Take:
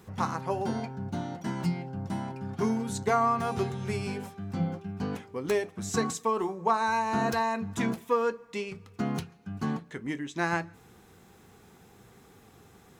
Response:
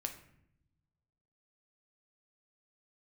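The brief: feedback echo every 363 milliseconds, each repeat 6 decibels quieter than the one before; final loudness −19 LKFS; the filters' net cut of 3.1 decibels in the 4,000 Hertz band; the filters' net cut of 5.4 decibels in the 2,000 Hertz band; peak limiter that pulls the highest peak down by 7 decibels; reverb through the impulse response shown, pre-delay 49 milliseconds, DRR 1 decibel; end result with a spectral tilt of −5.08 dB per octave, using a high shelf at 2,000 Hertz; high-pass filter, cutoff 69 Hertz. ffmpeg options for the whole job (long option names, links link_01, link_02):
-filter_complex "[0:a]highpass=69,highshelf=frequency=2000:gain=5,equalizer=frequency=2000:width_type=o:gain=-9,equalizer=frequency=4000:width_type=o:gain=-6.5,alimiter=limit=-21dB:level=0:latency=1,aecho=1:1:363|726|1089|1452|1815|2178:0.501|0.251|0.125|0.0626|0.0313|0.0157,asplit=2[link_01][link_02];[1:a]atrim=start_sample=2205,adelay=49[link_03];[link_02][link_03]afir=irnorm=-1:irlink=0,volume=-0.5dB[link_04];[link_01][link_04]amix=inputs=2:normalize=0,volume=10.5dB"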